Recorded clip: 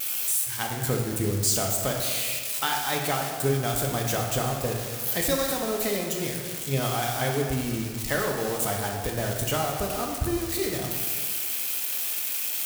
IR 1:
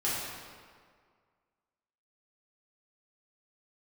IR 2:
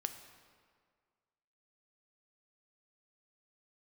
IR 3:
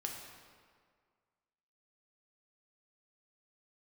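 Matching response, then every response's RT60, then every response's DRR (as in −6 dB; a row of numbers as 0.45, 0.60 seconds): 3; 1.9, 1.9, 1.9 seconds; −9.5, 7.5, 0.0 decibels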